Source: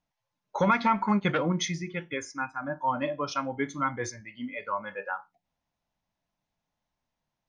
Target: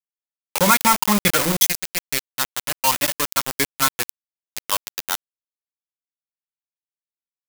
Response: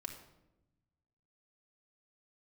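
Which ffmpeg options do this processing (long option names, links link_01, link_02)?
-af "aeval=exprs='val(0)*gte(abs(val(0)),0.0501)':channel_layout=same,crystalizer=i=4:c=0,volume=5dB"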